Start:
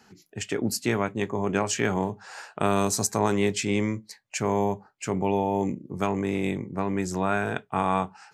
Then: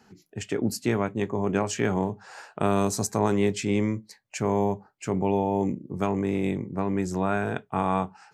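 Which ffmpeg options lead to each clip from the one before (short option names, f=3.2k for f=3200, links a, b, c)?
-af "tiltshelf=f=970:g=3,volume=-1.5dB"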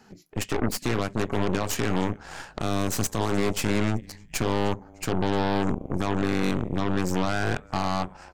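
-filter_complex "[0:a]alimiter=limit=-19dB:level=0:latency=1:release=228,asplit=4[a][b][c][d];[b]adelay=303,afreqshift=-120,volume=-23.5dB[e];[c]adelay=606,afreqshift=-240,volume=-29.2dB[f];[d]adelay=909,afreqshift=-360,volume=-34.9dB[g];[a][e][f][g]amix=inputs=4:normalize=0,aeval=exprs='0.126*(cos(1*acos(clip(val(0)/0.126,-1,1)))-cos(1*PI/2))+0.0282*(cos(8*acos(clip(val(0)/0.126,-1,1)))-cos(8*PI/2))':c=same,volume=3dB"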